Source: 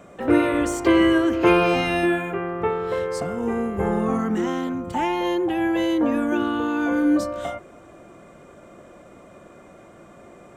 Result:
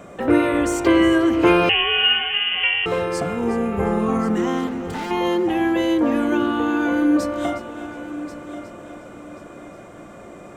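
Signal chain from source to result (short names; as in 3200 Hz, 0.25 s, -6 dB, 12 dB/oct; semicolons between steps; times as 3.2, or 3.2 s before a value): in parallel at -1 dB: compressor, threshold -30 dBFS, peak gain reduction 17 dB; 4.67–5.11 on the sum: overloaded stage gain 27.5 dB; multi-head echo 0.362 s, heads first and third, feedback 45%, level -14.5 dB; 1.69–2.86 inverted band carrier 3200 Hz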